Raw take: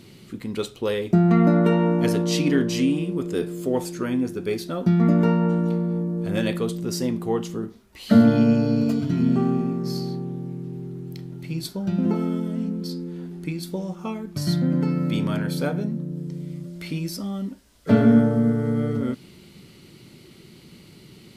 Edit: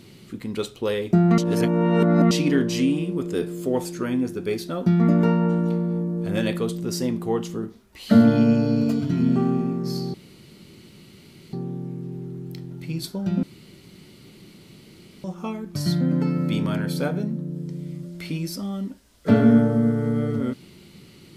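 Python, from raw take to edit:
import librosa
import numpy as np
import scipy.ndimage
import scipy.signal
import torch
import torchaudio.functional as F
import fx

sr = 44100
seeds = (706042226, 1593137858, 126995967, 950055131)

y = fx.edit(x, sr, fx.reverse_span(start_s=1.38, length_s=0.93),
    fx.insert_room_tone(at_s=10.14, length_s=1.39),
    fx.room_tone_fill(start_s=12.04, length_s=1.81), tone=tone)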